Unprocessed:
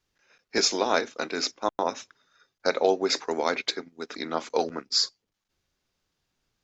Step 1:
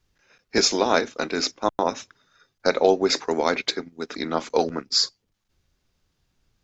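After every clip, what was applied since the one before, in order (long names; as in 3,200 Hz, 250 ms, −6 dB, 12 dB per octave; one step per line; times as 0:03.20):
low-shelf EQ 170 Hz +11 dB
level +3 dB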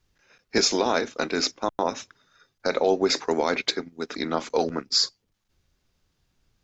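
brickwall limiter −10.5 dBFS, peak gain reduction 6.5 dB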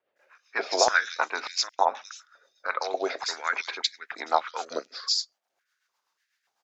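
multiband delay without the direct sound lows, highs 160 ms, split 3,000 Hz
rotating-speaker cabinet horn 8 Hz
high-pass on a step sequencer 3.4 Hz 580–1,800 Hz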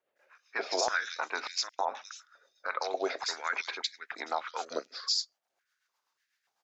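brickwall limiter −15.5 dBFS, peak gain reduction 8.5 dB
level −3 dB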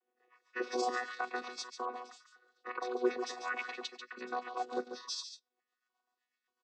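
channel vocoder with a chord as carrier bare fifth, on B3
single-tap delay 142 ms −9 dB
level −3.5 dB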